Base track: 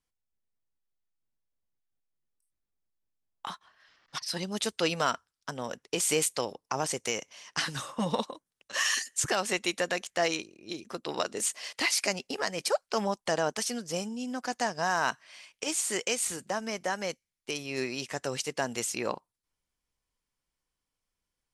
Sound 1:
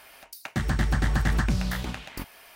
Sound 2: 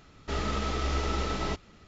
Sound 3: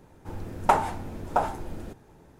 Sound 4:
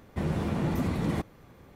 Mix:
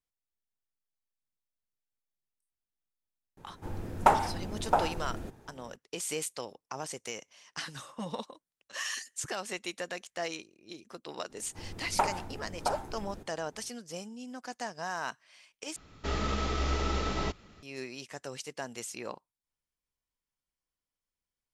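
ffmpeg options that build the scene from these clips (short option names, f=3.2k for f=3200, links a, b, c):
-filter_complex "[3:a]asplit=2[a][b];[0:a]volume=-8dB,asplit=2[c][d];[c]atrim=end=15.764[e];[2:a]atrim=end=1.87,asetpts=PTS-STARTPTS,volume=-1dB[f];[d]atrim=start=17.626[g];[a]atrim=end=2.39,asetpts=PTS-STARTPTS,volume=-1.5dB,afade=t=in:d=0.004:c=hsin,afade=t=out:st=2.386:d=0.004:c=hsin,adelay=148617S[h];[b]atrim=end=2.39,asetpts=PTS-STARTPTS,volume=-7.5dB,afade=t=in:d=0.004:c=hsin,afade=t=out:st=2.386:d=0.004:c=hsin,adelay=498330S[i];[e][f]acrossfade=d=0.004:c1=hsin:c2=hsin[j];[j][g]acrossfade=d=0.004:c1=hsin:c2=hsin[k];[k][h][i]amix=inputs=3:normalize=0"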